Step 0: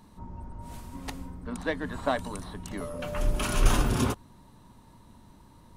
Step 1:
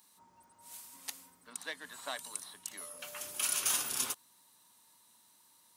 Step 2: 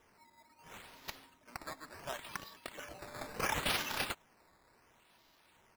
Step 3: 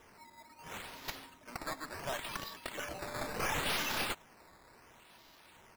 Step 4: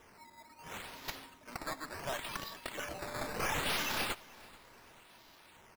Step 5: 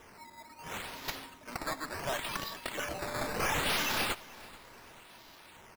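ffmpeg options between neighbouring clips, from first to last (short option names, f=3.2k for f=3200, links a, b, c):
-af "highpass=88,aderivative,volume=4.5dB"
-af "aecho=1:1:3.2:0.54,acrusher=samples=10:mix=1:aa=0.000001:lfo=1:lforange=10:lforate=0.71,volume=-3.5dB"
-af "aeval=exprs='(tanh(100*val(0)+0.35)-tanh(0.35))/100':c=same,volume=8.5dB"
-af "aecho=1:1:435|870|1305:0.075|0.0345|0.0159"
-af "asoftclip=type=tanh:threshold=-29.5dB,volume=5dB"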